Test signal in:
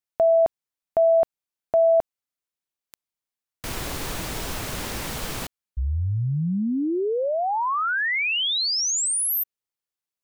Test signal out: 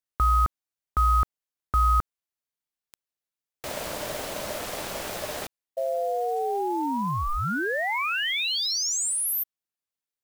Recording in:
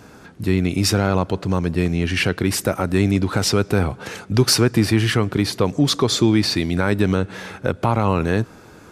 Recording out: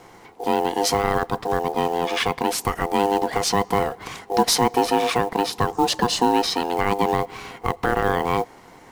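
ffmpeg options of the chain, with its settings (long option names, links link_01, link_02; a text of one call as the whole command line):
ffmpeg -i in.wav -af "aeval=exprs='val(0)*sin(2*PI*600*n/s)':channel_layout=same,acrusher=bits=6:mode=log:mix=0:aa=0.000001" out.wav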